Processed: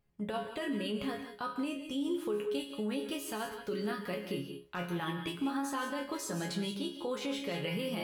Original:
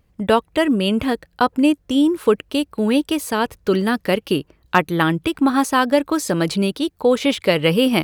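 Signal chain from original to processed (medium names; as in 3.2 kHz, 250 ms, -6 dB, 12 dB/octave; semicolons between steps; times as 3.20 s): chord resonator C#3 major, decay 0.25 s; peak limiter -27.5 dBFS, peak gain reduction 11.5 dB; gated-style reverb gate 210 ms rising, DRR 7 dB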